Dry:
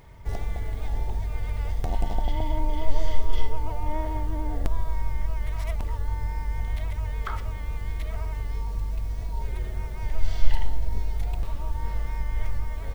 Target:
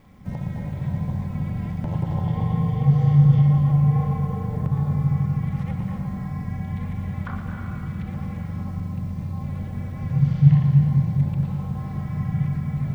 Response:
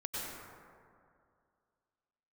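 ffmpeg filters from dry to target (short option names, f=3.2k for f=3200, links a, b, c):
-filter_complex "[0:a]aeval=exprs='val(0)*sin(2*PI*140*n/s)':c=same,acrossover=split=2800[a][b];[b]acompressor=threshold=-58dB:ratio=4:attack=1:release=60[c];[a][c]amix=inputs=2:normalize=0,asplit=2[d][e];[1:a]atrim=start_sample=2205,adelay=115[f];[e][f]afir=irnorm=-1:irlink=0,volume=-4.5dB[g];[d][g]amix=inputs=2:normalize=0"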